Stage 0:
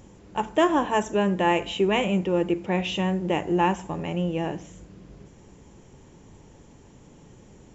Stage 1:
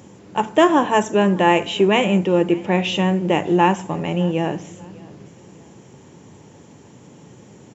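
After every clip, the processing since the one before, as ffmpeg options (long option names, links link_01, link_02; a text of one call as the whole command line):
ffmpeg -i in.wav -af "highpass=frequency=100:width=0.5412,highpass=frequency=100:width=1.3066,aecho=1:1:600|1200:0.0668|0.0247,volume=6.5dB" out.wav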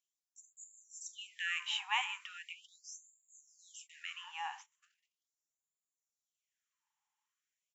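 ffmpeg -i in.wav -af "acompressor=threshold=-39dB:ratio=1.5,agate=range=-32dB:threshold=-36dB:ratio=16:detection=peak,afftfilt=real='re*gte(b*sr/1024,750*pow(6700/750,0.5+0.5*sin(2*PI*0.39*pts/sr)))':imag='im*gte(b*sr/1024,750*pow(6700/750,0.5+0.5*sin(2*PI*0.39*pts/sr)))':win_size=1024:overlap=0.75,volume=-2.5dB" out.wav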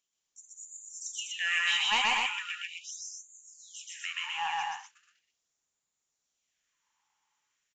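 ffmpeg -i in.wav -af "aresample=16000,asoftclip=type=tanh:threshold=-29dB,aresample=44100,aecho=1:1:128.3|201.2|247.8:1|0.355|0.631,volume=7.5dB" out.wav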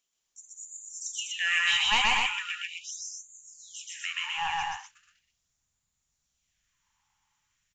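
ffmpeg -i in.wav -af "asubboost=boost=10.5:cutoff=120,volume=3dB" out.wav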